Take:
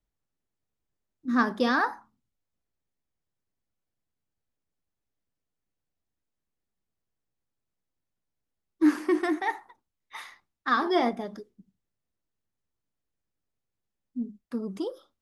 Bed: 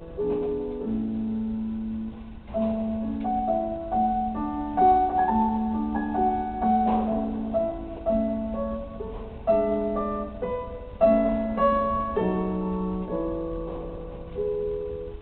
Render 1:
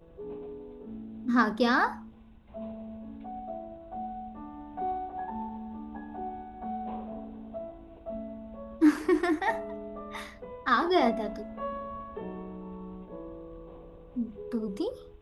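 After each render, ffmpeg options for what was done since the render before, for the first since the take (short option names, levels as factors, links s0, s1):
-filter_complex "[1:a]volume=0.2[s0];[0:a][s0]amix=inputs=2:normalize=0"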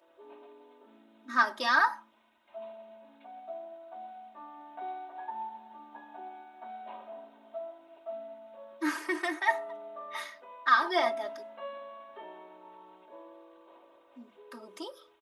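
-af "highpass=800,aecho=1:1:3.2:0.85"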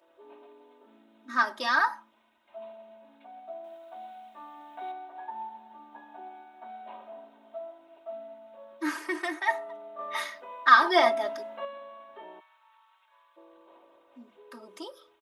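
-filter_complex "[0:a]asettb=1/sr,asplit=3[s0][s1][s2];[s0]atrim=end=3.644[s3];[s1]atrim=start=3.64:end=4.92,asetpts=PTS-STARTPTS,afade=t=in:d=0.004:c=qsin,afade=t=out:st=1.276:d=0.004:c=qsin,highshelf=f=2500:g=10.5[s4];[s2]atrim=start=4.916[s5];[s3][s4]acrossfade=d=0.004:c1=hsin:c2=qsin[s6];[s6][s5]acrossfade=d=0.004:c1=qsin:c2=hsin,asplit=3[s7][s8][s9];[s7]afade=t=out:st=12.39:d=0.02[s10];[s8]highpass=f=1200:w=0.5412,highpass=f=1200:w=1.3066,afade=t=in:st=12.39:d=0.02,afade=t=out:st=13.36:d=0.02[s11];[s9]afade=t=in:st=13.36:d=0.02[s12];[s10][s11][s12]amix=inputs=3:normalize=0,asplit=3[s13][s14][s15];[s13]atrim=end=9.992[s16];[s14]atrim=start=9.988:end=11.652,asetpts=PTS-STARTPTS,volume=2[s17];[s15]atrim=start=11.648[s18];[s16][s17]acrossfade=d=0.004:c1=hsin:c2=hsin[s19];[s19][s18]acrossfade=d=0.004:c1=hsin:c2=hsin"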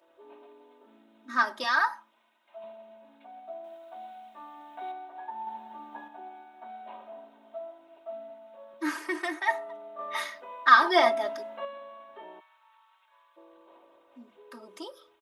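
-filter_complex "[0:a]asettb=1/sr,asplit=3[s0][s1][s2];[s0]atrim=end=1.644[s3];[s1]atrim=start=1.64:end=2.64,asetpts=PTS-STARTPTS,afade=t=in:d=0.004:c=qsin,afade=t=out:st=0.996:d=0.004:c=qsin,highpass=f=490:p=1[s4];[s2]atrim=start=2.636[s5];[s3][s4]acrossfade=d=0.004:c1=hsin:c2=qsin[s6];[s6][s5]acrossfade=d=0.004:c1=qsin:c2=hsin,asettb=1/sr,asplit=3[s7][s8][s9];[s7]atrim=end=8.304[s10];[s8]atrim=start=8.3:end=8.74,asetpts=PTS-STARTPTS,afade=t=in:d=0.004:c=qsin,afade=t=out:st=0.436:d=0.004:c=qsin,highpass=210[s11];[s9]atrim=start=8.736[s12];[s10][s11]acrossfade=d=0.004:c1=hsin:c2=qsin[s13];[s13][s12]acrossfade=d=0.004:c1=qsin:c2=hsin,asplit=3[s14][s15][s16];[s14]atrim=end=5.472[s17];[s15]atrim=start=5.468:end=6.082,asetpts=PTS-STARTPTS,volume=1.88[s18];[s16]atrim=start=6.078[s19];[s17][s18]acrossfade=d=0.004:c1=hsin:c2=hsin[s20];[s20][s19]acrossfade=d=0.004:c1=hsin:c2=hsin"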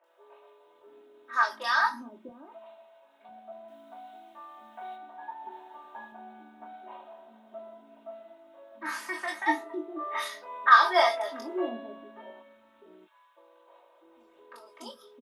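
-filter_complex "[0:a]asplit=2[s0][s1];[s1]adelay=22,volume=0.531[s2];[s0][s2]amix=inputs=2:normalize=0,acrossover=split=440|2500[s3][s4][s5];[s5]adelay=40[s6];[s3]adelay=650[s7];[s7][s4][s6]amix=inputs=3:normalize=0"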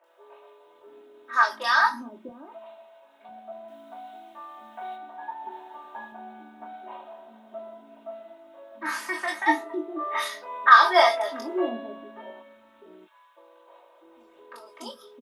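-af "volume=1.68,alimiter=limit=0.794:level=0:latency=1"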